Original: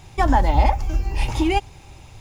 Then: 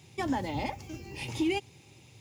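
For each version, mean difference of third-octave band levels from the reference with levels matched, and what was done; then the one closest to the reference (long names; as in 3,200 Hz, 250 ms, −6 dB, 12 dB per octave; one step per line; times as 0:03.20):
3.0 dB: high-pass filter 110 Hz 24 dB per octave
flat-topped bell 1,000 Hz −8.5 dB
level −7 dB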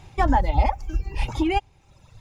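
5.0 dB: reverb reduction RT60 1.3 s
high-shelf EQ 5,800 Hz −8.5 dB
level −1.5 dB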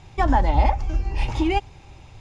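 2.0 dB: high-frequency loss of the air 77 metres
level −1.5 dB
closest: third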